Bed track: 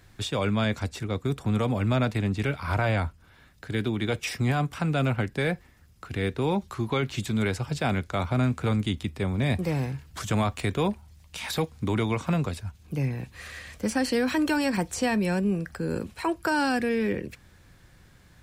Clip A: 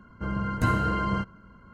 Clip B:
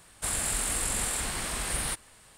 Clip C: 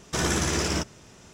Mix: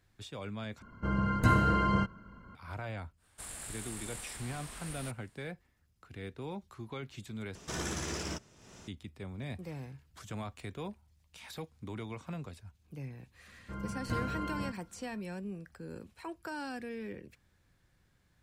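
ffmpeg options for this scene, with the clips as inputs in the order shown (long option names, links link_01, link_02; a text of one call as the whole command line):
ffmpeg -i bed.wav -i cue0.wav -i cue1.wav -i cue2.wav -filter_complex "[1:a]asplit=2[link_01][link_02];[0:a]volume=-15.5dB[link_03];[3:a]acompressor=mode=upward:threshold=-33dB:ratio=4:attack=6.8:release=443:knee=2.83:detection=peak[link_04];[link_03]asplit=3[link_05][link_06][link_07];[link_05]atrim=end=0.824[link_08];[link_01]atrim=end=1.73,asetpts=PTS-STARTPTS,volume=-1dB[link_09];[link_06]atrim=start=2.546:end=7.554[link_10];[link_04]atrim=end=1.33,asetpts=PTS-STARTPTS,volume=-11.5dB[link_11];[link_07]atrim=start=8.876[link_12];[2:a]atrim=end=2.37,asetpts=PTS-STARTPTS,volume=-14.5dB,afade=type=in:duration=0.1,afade=type=out:start_time=2.27:duration=0.1,adelay=3160[link_13];[link_02]atrim=end=1.73,asetpts=PTS-STARTPTS,volume=-11dB,afade=type=in:duration=0.004:curve=hsin,afade=type=out:start_time=1.726:duration=0.004:curve=hsin,adelay=594468S[link_14];[link_08][link_09]acrossfade=duration=0.004:curve1=hsin:curve2=hsin[link_15];[link_15][link_10]acrossfade=duration=0.004:curve1=hsin:curve2=hsin[link_16];[link_16][link_11]acrossfade=duration=0.004:curve1=hsin:curve2=hsin[link_17];[link_17][link_12]acrossfade=duration=0.004:curve1=hsin:curve2=hsin[link_18];[link_18][link_13][link_14]amix=inputs=3:normalize=0" out.wav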